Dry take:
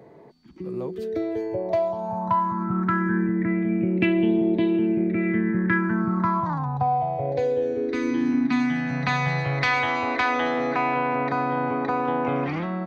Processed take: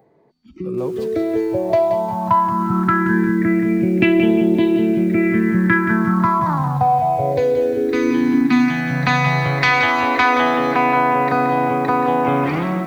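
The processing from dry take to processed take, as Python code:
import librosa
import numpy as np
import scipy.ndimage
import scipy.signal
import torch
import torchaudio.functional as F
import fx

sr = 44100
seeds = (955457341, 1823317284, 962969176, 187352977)

y = fx.noise_reduce_blind(x, sr, reduce_db=15)
y = fx.echo_crushed(y, sr, ms=176, feedback_pct=35, bits=8, wet_db=-9.0)
y = y * 10.0 ** (7.0 / 20.0)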